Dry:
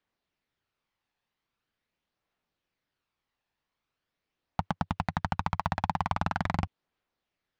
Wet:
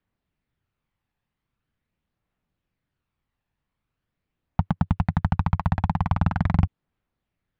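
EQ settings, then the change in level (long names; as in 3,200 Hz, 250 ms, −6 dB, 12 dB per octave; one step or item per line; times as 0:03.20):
bass and treble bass +13 dB, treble −10 dB
0.0 dB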